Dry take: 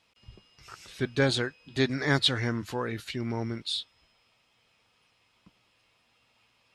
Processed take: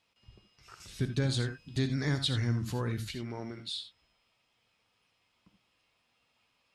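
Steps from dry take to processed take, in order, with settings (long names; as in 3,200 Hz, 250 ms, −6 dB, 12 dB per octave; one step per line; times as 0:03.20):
0:00.80–0:03.15: bass and treble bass +13 dB, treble +8 dB
downward compressor, threshold −20 dBFS, peak gain reduction 8 dB
reverb whose tail is shaped and stops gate 100 ms rising, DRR 9 dB
level −6.5 dB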